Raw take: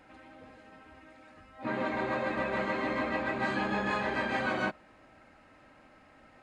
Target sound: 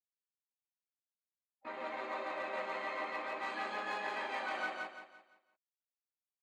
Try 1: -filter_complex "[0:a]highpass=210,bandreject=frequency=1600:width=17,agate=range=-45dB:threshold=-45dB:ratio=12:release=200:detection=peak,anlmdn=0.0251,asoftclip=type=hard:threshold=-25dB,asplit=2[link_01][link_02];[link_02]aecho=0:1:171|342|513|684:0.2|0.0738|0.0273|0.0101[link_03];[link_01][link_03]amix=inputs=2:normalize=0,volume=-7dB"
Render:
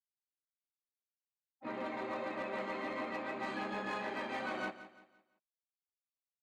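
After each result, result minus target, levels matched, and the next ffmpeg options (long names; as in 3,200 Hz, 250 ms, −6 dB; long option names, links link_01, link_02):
250 Hz band +9.5 dB; echo-to-direct −11.5 dB
-filter_complex "[0:a]highpass=570,bandreject=frequency=1600:width=17,agate=range=-45dB:threshold=-45dB:ratio=12:release=200:detection=peak,anlmdn=0.0251,asoftclip=type=hard:threshold=-25dB,asplit=2[link_01][link_02];[link_02]aecho=0:1:171|342|513|684:0.2|0.0738|0.0273|0.0101[link_03];[link_01][link_03]amix=inputs=2:normalize=0,volume=-7dB"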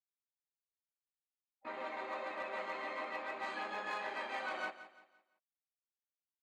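echo-to-direct −11.5 dB
-filter_complex "[0:a]highpass=570,bandreject=frequency=1600:width=17,agate=range=-45dB:threshold=-45dB:ratio=12:release=200:detection=peak,anlmdn=0.0251,asoftclip=type=hard:threshold=-25dB,asplit=2[link_01][link_02];[link_02]aecho=0:1:171|342|513|684|855:0.75|0.277|0.103|0.038|0.0141[link_03];[link_01][link_03]amix=inputs=2:normalize=0,volume=-7dB"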